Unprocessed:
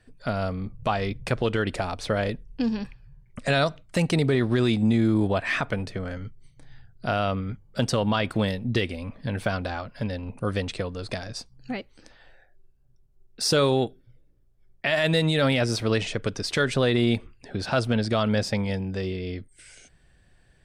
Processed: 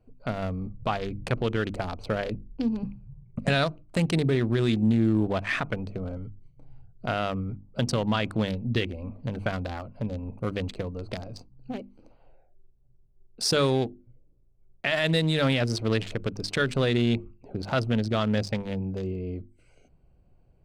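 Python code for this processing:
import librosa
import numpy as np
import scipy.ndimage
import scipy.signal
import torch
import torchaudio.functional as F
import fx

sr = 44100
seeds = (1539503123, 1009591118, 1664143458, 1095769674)

y = fx.peak_eq(x, sr, hz=160.0, db=10.0, octaves=1.9, at=(2.83, 3.49))
y = fx.wiener(y, sr, points=25)
y = fx.hum_notches(y, sr, base_hz=50, count=7)
y = fx.dynamic_eq(y, sr, hz=600.0, q=0.93, threshold_db=-35.0, ratio=4.0, max_db=-3)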